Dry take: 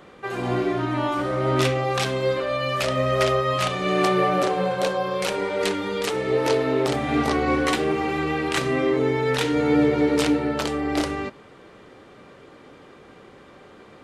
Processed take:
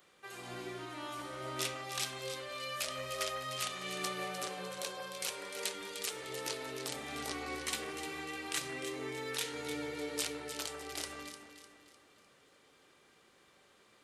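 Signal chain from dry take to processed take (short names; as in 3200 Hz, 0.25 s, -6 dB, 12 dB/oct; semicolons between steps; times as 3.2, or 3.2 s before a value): pre-emphasis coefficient 0.9; notches 50/100/150/200/250/300 Hz; on a send: echo with dull and thin repeats by turns 0.151 s, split 1800 Hz, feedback 65%, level -6 dB; on the sum: gain -3.5 dB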